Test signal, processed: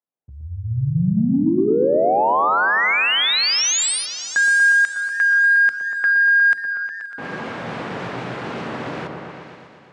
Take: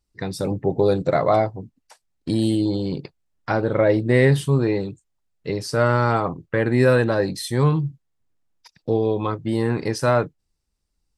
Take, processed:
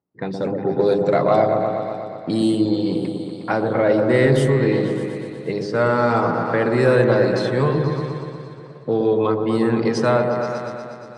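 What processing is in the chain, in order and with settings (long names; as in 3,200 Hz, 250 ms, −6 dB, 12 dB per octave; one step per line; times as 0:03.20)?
low-pass filter 10,000 Hz 24 dB per octave
low-pass that shuts in the quiet parts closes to 910 Hz, open at −16.5 dBFS
high-pass filter 130 Hz 24 dB per octave
mains-hum notches 50/100/150/200/250/300/350/400 Hz
in parallel at −3 dB: downward compressor, threshold −30 dBFS
on the sum: soft clipping −5.5 dBFS
on a send: echo whose low-pass opens from repeat to repeat 120 ms, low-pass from 750 Hz, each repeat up 1 octave, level −3 dB
on the sum: feedback echo with a swinging delay time 533 ms, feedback 50%, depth 201 cents, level −22.5 dB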